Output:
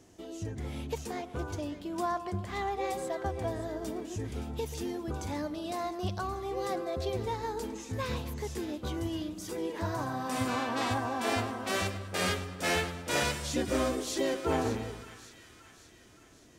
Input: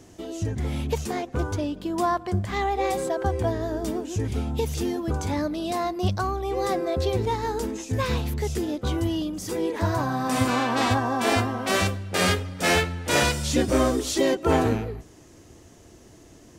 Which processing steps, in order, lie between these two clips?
low-shelf EQ 200 Hz −3 dB
on a send: echo with a time of its own for lows and highs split 1,300 Hz, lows 133 ms, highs 572 ms, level −12 dB
on the sum: level −8 dB

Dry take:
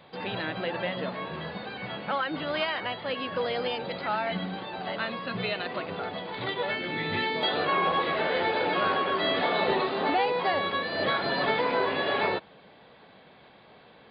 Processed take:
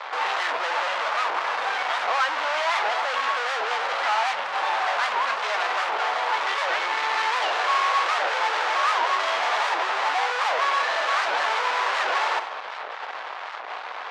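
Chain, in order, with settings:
tilt shelving filter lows +7.5 dB, about 1,200 Hz
fuzz pedal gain 48 dB, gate −50 dBFS
four-pole ladder high-pass 750 Hz, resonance 30%
high-frequency loss of the air 140 metres
on a send at −11 dB: convolution reverb RT60 0.35 s, pre-delay 58 ms
on the sum: wow of a warped record 78 rpm, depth 250 cents

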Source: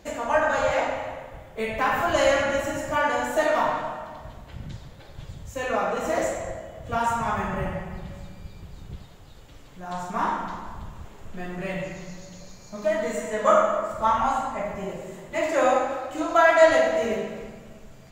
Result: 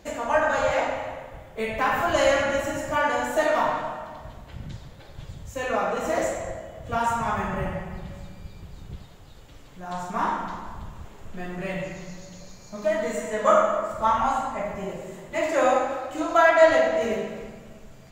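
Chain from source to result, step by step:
0:16.49–0:17.01: high-shelf EQ 7,000 Hz −8 dB

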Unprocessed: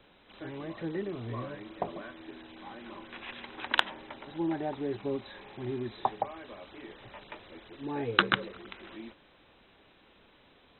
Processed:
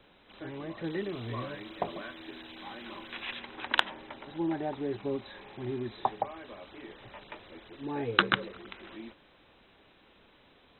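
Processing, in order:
0:00.84–0:03.39: high-shelf EQ 2,400 Hz +10.5 dB

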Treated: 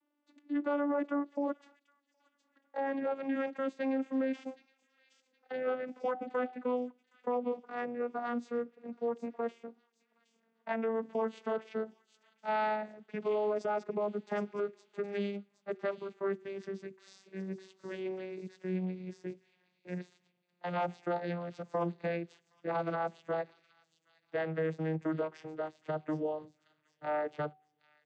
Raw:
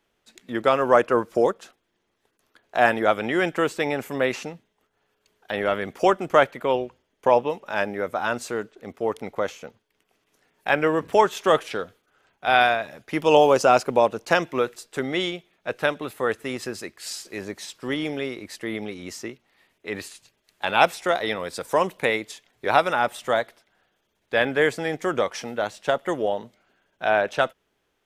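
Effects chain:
vocoder with a gliding carrier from D4, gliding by −12 semitones
high-shelf EQ 4,000 Hz −8.5 dB
hum removal 379.3 Hz, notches 2
brickwall limiter −17.5 dBFS, peak gain reduction 11.5 dB
delay with a high-pass on its return 768 ms, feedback 32%, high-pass 4,900 Hz, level −6 dB
level −7.5 dB

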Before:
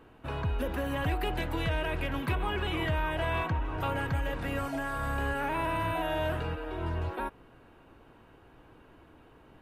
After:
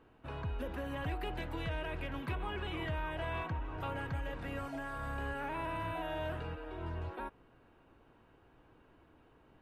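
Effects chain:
high-shelf EQ 8,100 Hz −8 dB
level −7.5 dB

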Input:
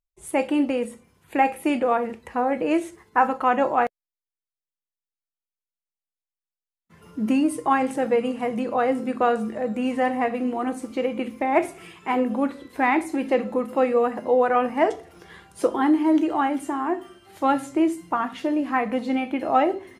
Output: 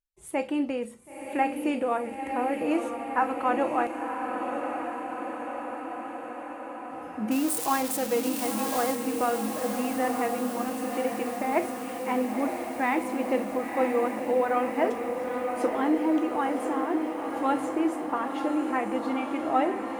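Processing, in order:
0:07.31–0:08.95: spike at every zero crossing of −15.5 dBFS
feedback delay with all-pass diffusion 985 ms, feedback 70%, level −5.5 dB
level −6 dB

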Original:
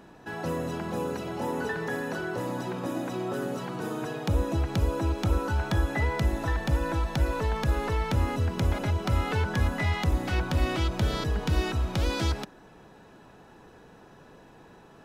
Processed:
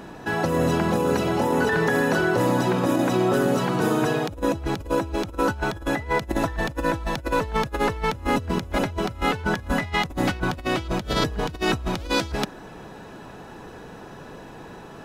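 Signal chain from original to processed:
compressor whose output falls as the input rises −31 dBFS, ratio −0.5
level +7.5 dB

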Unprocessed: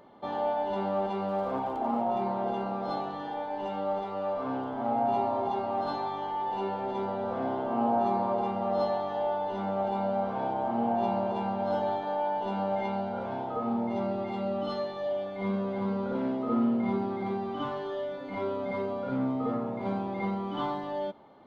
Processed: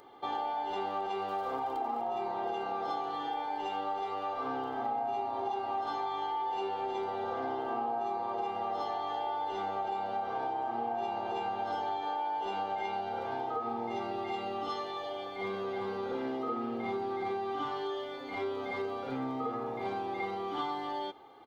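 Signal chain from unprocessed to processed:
spectral tilt +2 dB per octave
comb filter 2.5 ms, depth 71%
downward compressor, threshold −31 dBFS, peak gain reduction 9 dB

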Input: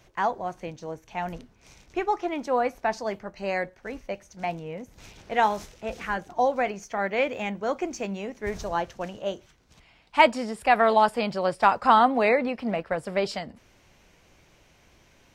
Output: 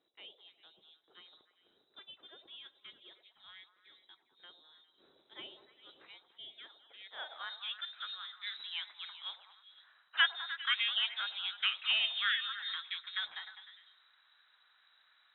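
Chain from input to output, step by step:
low-shelf EQ 310 Hz +7 dB
voice inversion scrambler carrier 3,900 Hz
band-pass filter sweep 370 Hz → 1,500 Hz, 0:06.93–0:07.61
echo through a band-pass that steps 101 ms, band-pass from 600 Hz, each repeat 0.7 octaves, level −6.5 dB
level −3.5 dB

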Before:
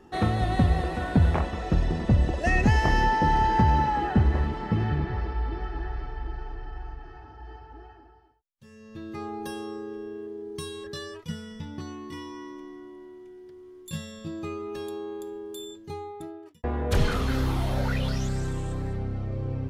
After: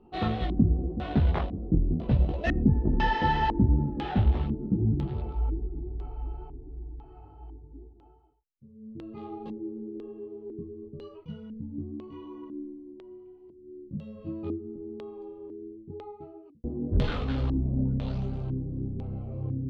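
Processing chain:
adaptive Wiener filter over 25 samples
multi-voice chorus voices 4, 0.79 Hz, delay 18 ms, depth 4.4 ms
auto-filter low-pass square 1 Hz 280–3,500 Hz

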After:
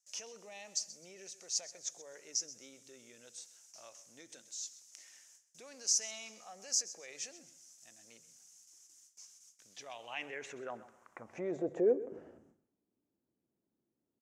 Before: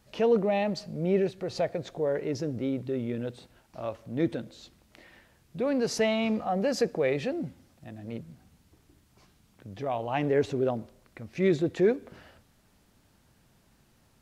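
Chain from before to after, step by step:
noise gate with hold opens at −52 dBFS
high shelf with overshoot 5,300 Hz +8 dB, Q 3
mains-hum notches 50/100/150 Hz
in parallel at 0 dB: downward compressor, threshold −38 dBFS, peak gain reduction 18 dB
on the sum: brickwall limiter −19 dBFS, peak gain reduction 6.5 dB
band-pass filter sweep 5,500 Hz → 330 Hz, 0:09.53–0:12.28
on a send: repeating echo 129 ms, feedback 28%, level −16 dB
on the sum: level +2 dB

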